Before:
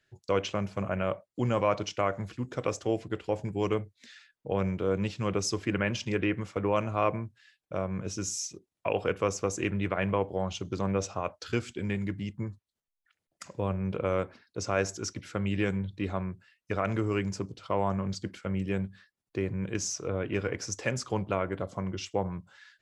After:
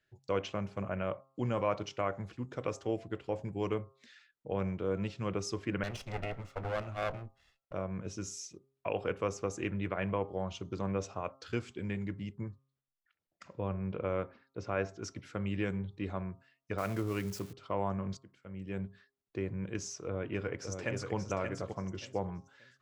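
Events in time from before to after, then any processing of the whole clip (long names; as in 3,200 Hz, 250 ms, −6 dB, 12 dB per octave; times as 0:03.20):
0:05.83–0:07.73: lower of the sound and its delayed copy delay 1.5 ms
0:12.41–0:15.01: low-pass filter 6,000 Hz → 3,100 Hz
0:16.78–0:17.53: spike at every zero crossing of −28.5 dBFS
0:18.17–0:18.86: fade in quadratic, from −17 dB
0:20.06–0:21.14: delay throw 580 ms, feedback 25%, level −5.5 dB
whole clip: high-shelf EQ 5,100 Hz −7.5 dB; hum removal 134.5 Hz, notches 10; level −5 dB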